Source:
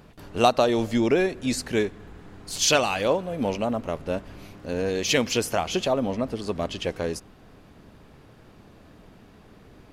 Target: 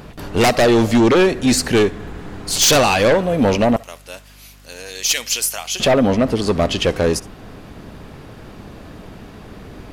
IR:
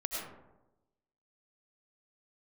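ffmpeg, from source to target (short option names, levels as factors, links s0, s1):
-filter_complex "[0:a]asettb=1/sr,asplit=3[s0][s1][s2];[s0]atrim=end=3.764[s3];[s1]atrim=start=3.76:end=5.8,asetpts=PTS-STARTPTS,afade=t=in:d=0.004:c=qsin,afade=t=out:st=2.036:d=0.004:c=qsin,aderivative[s4];[s2]atrim=start=5.796[s5];[s3][s4]acrossfade=d=0.004:c1=hsin:c2=qsin[s6];[s6][s5]acrossfade=d=0.004:c1=qsin:c2=hsin,aeval=exprs='val(0)+0.00112*(sin(2*PI*50*n/s)+sin(2*PI*2*50*n/s)/2+sin(2*PI*3*50*n/s)/3+sin(2*PI*4*50*n/s)/4+sin(2*PI*5*50*n/s)/5)':c=same,asplit=2[s7][s8];[s8]aeval=exprs='0.596*sin(PI/2*5.62*val(0)/0.596)':c=same,volume=0.501[s9];[s7][s9]amix=inputs=2:normalize=0,aeval=exprs='0.841*(cos(1*acos(clip(val(0)/0.841,-1,1)))-cos(1*PI/2))+0.0944*(cos(2*acos(clip(val(0)/0.841,-1,1)))-cos(2*PI/2))':c=same[s10];[1:a]atrim=start_sample=2205,atrim=end_sample=3087[s11];[s10][s11]afir=irnorm=-1:irlink=0"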